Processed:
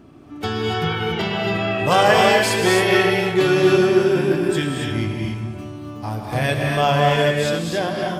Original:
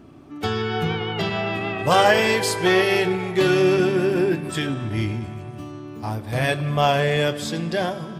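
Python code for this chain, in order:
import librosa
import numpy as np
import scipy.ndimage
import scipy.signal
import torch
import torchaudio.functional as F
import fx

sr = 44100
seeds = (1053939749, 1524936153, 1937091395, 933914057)

y = fx.rev_gated(x, sr, seeds[0], gate_ms=310, shape='rising', drr_db=0.5)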